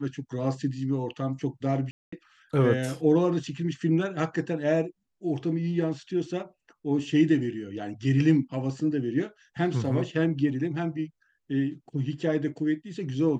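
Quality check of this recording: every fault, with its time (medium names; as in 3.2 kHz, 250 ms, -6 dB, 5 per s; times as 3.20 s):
1.91–2.12 s: dropout 214 ms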